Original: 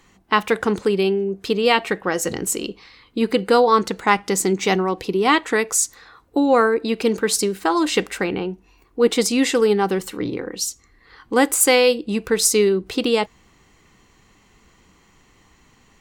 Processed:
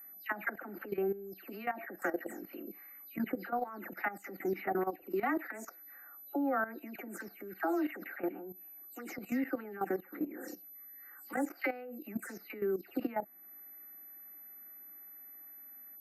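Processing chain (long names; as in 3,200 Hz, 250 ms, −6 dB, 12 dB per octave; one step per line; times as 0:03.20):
every frequency bin delayed by itself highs early, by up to 200 ms
high-pass filter 120 Hz 12 dB per octave
high-shelf EQ 5,800 Hz −8 dB
steady tone 12,000 Hz −29 dBFS
three-way crossover with the lows and the highs turned down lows −15 dB, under 240 Hz, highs −18 dB, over 2,200 Hz
brickwall limiter −15.5 dBFS, peak gain reduction 10 dB
phaser with its sweep stopped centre 680 Hz, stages 8
output level in coarse steps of 14 dB
one half of a high-frequency compander encoder only
level −3 dB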